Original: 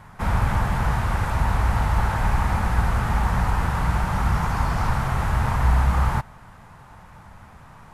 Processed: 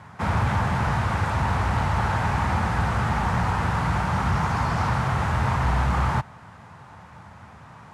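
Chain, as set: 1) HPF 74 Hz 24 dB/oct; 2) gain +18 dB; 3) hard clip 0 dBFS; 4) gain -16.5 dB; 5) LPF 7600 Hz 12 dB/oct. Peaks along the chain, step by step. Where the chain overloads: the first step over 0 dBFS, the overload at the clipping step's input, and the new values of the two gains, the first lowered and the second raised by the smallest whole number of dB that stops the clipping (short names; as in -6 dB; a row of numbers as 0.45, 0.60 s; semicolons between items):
-11.5, +6.5, 0.0, -16.5, -16.0 dBFS; step 2, 6.5 dB; step 2 +11 dB, step 4 -9.5 dB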